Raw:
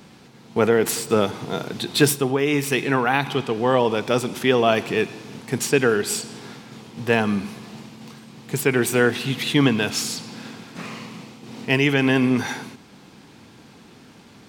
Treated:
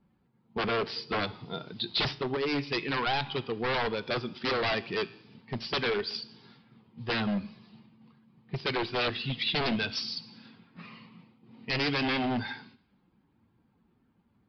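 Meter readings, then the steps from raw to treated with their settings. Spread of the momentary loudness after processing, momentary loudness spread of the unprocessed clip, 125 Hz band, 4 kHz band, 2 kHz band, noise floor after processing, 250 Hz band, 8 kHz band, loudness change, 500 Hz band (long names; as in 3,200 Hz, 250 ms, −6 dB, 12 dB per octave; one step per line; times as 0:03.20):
13 LU, 19 LU, −11.5 dB, −4.0 dB, −8.5 dB, −70 dBFS, −12.0 dB, −27.5 dB, −10.0 dB, −12.5 dB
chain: spectral dynamics exaggerated over time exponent 1.5
wave folding −21 dBFS
high-shelf EQ 3,300 Hz +7 dB
tuned comb filter 57 Hz, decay 0.55 s, harmonics all, mix 40%
low-pass that shuts in the quiet parts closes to 1,300 Hz, open at −37 dBFS
downsampling to 11,025 Hz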